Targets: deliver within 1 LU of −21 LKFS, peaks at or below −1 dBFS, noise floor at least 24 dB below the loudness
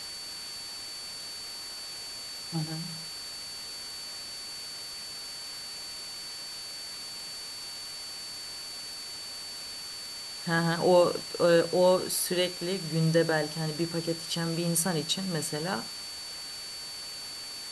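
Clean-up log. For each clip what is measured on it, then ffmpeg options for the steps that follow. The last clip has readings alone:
interfering tone 4,500 Hz; level of the tone −39 dBFS; background noise floor −40 dBFS; target noise floor −55 dBFS; integrated loudness −31.0 LKFS; sample peak −10.5 dBFS; target loudness −21.0 LKFS
→ -af "bandreject=frequency=4500:width=30"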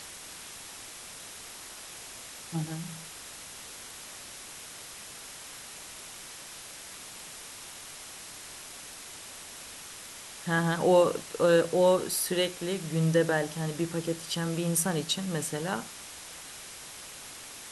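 interfering tone none found; background noise floor −45 dBFS; target noise floor −56 dBFS
→ -af "afftdn=noise_reduction=11:noise_floor=-45"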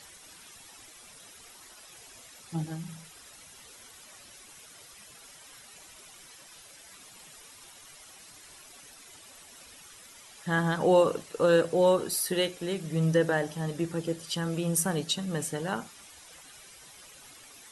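background noise floor −52 dBFS; integrated loudness −28.0 LKFS; sample peak −11.0 dBFS; target loudness −21.0 LKFS
→ -af "volume=7dB"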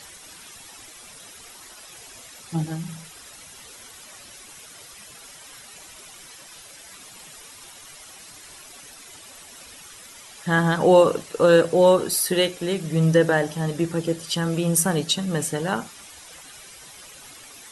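integrated loudness −21.0 LKFS; sample peak −4.0 dBFS; background noise floor −45 dBFS

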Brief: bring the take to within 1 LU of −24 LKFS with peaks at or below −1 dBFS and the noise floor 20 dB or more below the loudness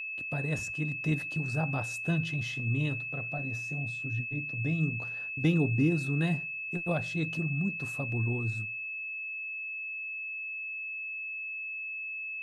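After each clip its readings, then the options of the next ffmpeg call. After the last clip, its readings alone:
interfering tone 2,600 Hz; level of the tone −35 dBFS; integrated loudness −32.0 LKFS; sample peak −15.0 dBFS; target loudness −24.0 LKFS
→ -af "bandreject=frequency=2600:width=30"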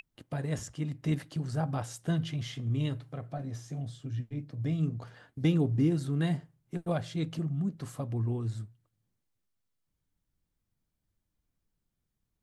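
interfering tone none found; integrated loudness −33.0 LKFS; sample peak −15.5 dBFS; target loudness −24.0 LKFS
→ -af "volume=9dB"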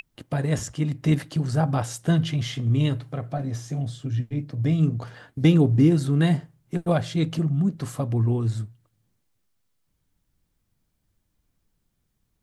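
integrated loudness −24.0 LKFS; sample peak −6.5 dBFS; background noise floor −74 dBFS

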